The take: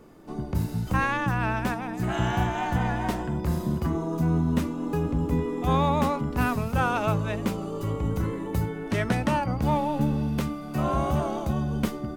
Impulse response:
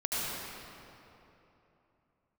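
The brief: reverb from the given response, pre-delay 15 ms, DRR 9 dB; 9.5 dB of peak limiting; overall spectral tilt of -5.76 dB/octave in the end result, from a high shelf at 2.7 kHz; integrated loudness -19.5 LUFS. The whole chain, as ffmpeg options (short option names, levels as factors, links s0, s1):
-filter_complex "[0:a]highshelf=f=2700:g=9,alimiter=limit=0.112:level=0:latency=1,asplit=2[s0][s1];[1:a]atrim=start_sample=2205,adelay=15[s2];[s1][s2]afir=irnorm=-1:irlink=0,volume=0.141[s3];[s0][s3]amix=inputs=2:normalize=0,volume=2.82"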